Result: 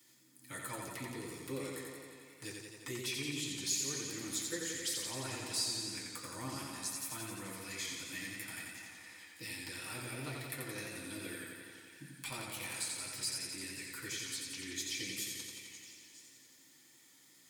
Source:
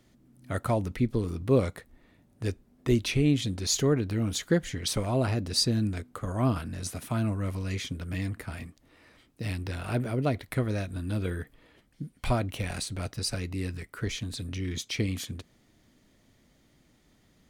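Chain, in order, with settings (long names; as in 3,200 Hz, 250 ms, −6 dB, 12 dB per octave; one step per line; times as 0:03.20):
first-order pre-emphasis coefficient 0.9
downward compressor 2 to 1, threshold −55 dBFS, peak gain reduction 16.5 dB
echo through a band-pass that steps 320 ms, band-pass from 870 Hz, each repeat 1.4 octaves, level −8 dB
convolution reverb RT60 0.20 s, pre-delay 3 ms, DRR −4.5 dB
feedback echo with a swinging delay time 87 ms, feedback 74%, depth 56 cents, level −3.5 dB
level +5.5 dB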